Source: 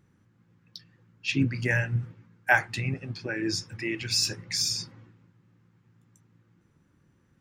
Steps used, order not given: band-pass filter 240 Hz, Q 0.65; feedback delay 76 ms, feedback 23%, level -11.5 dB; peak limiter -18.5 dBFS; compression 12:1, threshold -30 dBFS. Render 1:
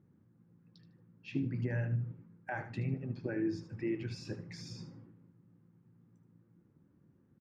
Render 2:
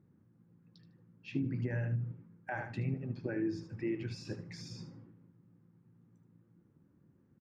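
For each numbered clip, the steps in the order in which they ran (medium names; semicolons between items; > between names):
peak limiter > band-pass filter > compression > feedback delay; feedback delay > peak limiter > band-pass filter > compression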